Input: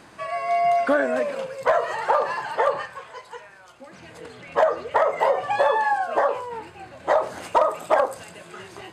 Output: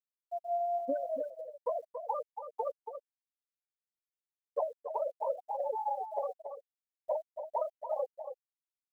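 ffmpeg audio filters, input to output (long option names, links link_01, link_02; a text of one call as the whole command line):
ffmpeg -i in.wav -filter_complex "[0:a]lowpass=1500,afwtdn=0.0447,asplit=3[link_01][link_02][link_03];[link_01]afade=type=out:start_time=4.86:duration=0.02[link_04];[link_02]aemphasis=mode=production:type=50kf,afade=type=in:start_time=4.86:duration=0.02,afade=type=out:start_time=7.16:duration=0.02[link_05];[link_03]afade=type=in:start_time=7.16:duration=0.02[link_06];[link_04][link_05][link_06]amix=inputs=3:normalize=0,afftfilt=real='re*gte(hypot(re,im),0.501)':imag='im*gte(hypot(re,im),0.501)':win_size=1024:overlap=0.75,lowshelf=frequency=380:gain=3,acompressor=threshold=-29dB:ratio=2,acrusher=bits=10:mix=0:aa=0.000001,aphaser=in_gain=1:out_gain=1:delay=4.4:decay=0.26:speed=0.87:type=triangular,aecho=1:1:280:0.376,volume=-7dB" out.wav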